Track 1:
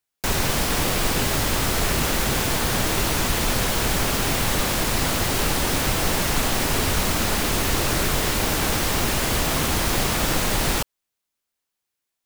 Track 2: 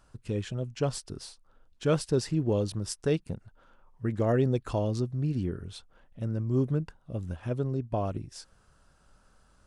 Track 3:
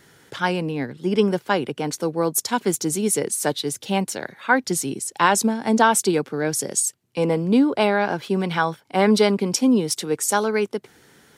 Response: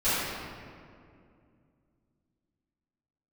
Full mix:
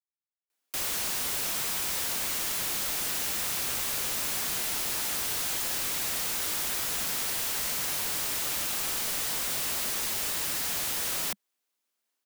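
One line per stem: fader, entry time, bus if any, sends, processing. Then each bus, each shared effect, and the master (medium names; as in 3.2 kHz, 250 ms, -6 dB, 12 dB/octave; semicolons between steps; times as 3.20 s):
0.0 dB, 0.50 s, no bus, no send, steep high-pass 200 Hz 72 dB/octave
+3.0 dB, 1.10 s, bus A, no send, band-stop 610 Hz, Q 12; decay stretcher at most 71 dB/s
mute
bus A: 0.0 dB, high-pass 110 Hz 12 dB/octave; peak limiter -19 dBFS, peak gain reduction 7.5 dB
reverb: none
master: integer overflow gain 26 dB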